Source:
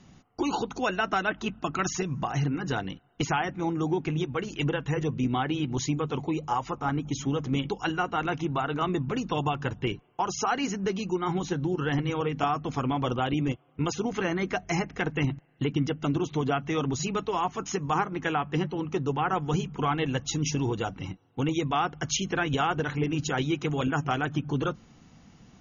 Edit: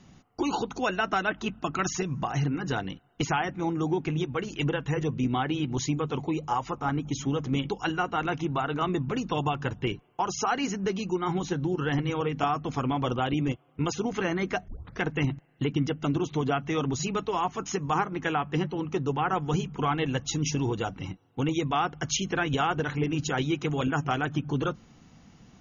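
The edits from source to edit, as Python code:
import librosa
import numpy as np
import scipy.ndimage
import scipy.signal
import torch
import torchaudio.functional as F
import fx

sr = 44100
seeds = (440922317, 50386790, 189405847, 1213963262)

y = fx.edit(x, sr, fx.tape_start(start_s=14.68, length_s=0.32), tone=tone)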